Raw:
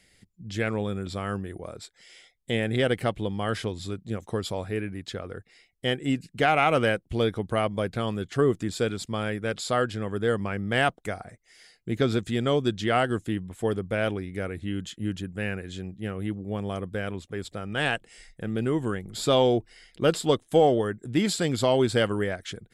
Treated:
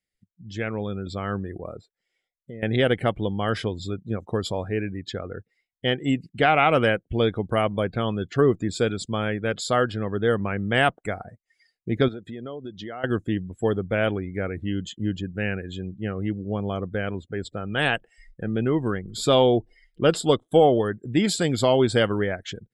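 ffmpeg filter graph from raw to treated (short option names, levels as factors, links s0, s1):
-filter_complex "[0:a]asettb=1/sr,asplit=3[s0][s1][s2];[s0]atrim=end=1.814[s3];[s1]atrim=start=1.81:end=2.63,asetpts=PTS-STARTPTS,afade=t=in:d=0.004:c=qsin,afade=t=out:st=0.816:d=0.004:c=qsin,highshelf=f=2000:g=-10,acompressor=threshold=0.00891:ratio=3:attack=3.2:release=140:knee=1:detection=peak,acrusher=bits=9:mode=log:mix=0:aa=0.000001[s4];[s2]atrim=start=2.626[s5];[s3][s4]acrossfade=d=0.004:c1=hsin:c2=qsin[s6];[s6][s5]acrossfade=d=0.004:c1=qsin:c2=hsin,asettb=1/sr,asplit=3[s7][s8][s9];[s7]atrim=end=12.084[s10];[s8]atrim=start=12.08:end=13.04,asetpts=PTS-STARTPTS,afade=t=in:d=0.004:c=qsin,afade=t=out:st=0.956:d=0.004:c=qsin,highpass=f=240:p=1,highshelf=f=2300:g=-6,acompressor=threshold=0.0178:ratio=6:attack=3.2:release=140:knee=1:detection=peak[s11];[s9]atrim=start=13.036[s12];[s10][s11]acrossfade=d=0.004:c1=hsin:c2=qsin[s13];[s13][s12]acrossfade=d=0.004:c1=qsin:c2=hsin,afftdn=nr=25:nf=-44,dynaudnorm=f=730:g=3:m=1.88,volume=0.794"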